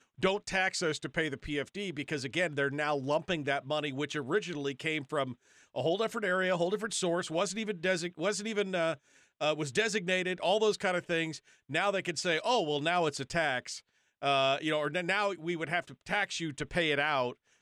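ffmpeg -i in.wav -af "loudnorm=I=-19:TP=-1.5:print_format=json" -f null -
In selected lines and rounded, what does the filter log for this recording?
"input_i" : "-31.7",
"input_tp" : "-17.1",
"input_lra" : "1.8",
"input_thresh" : "-41.8",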